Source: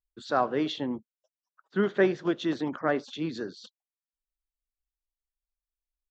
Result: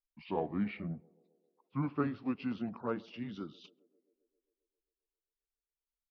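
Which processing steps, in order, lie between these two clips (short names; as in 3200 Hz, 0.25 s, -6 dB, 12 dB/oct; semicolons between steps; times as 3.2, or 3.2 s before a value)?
gliding pitch shift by -8 st ending unshifted; bell 200 Hz +4 dB 0.33 oct; narrowing echo 0.133 s, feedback 73%, band-pass 450 Hz, level -23 dB; gain -8 dB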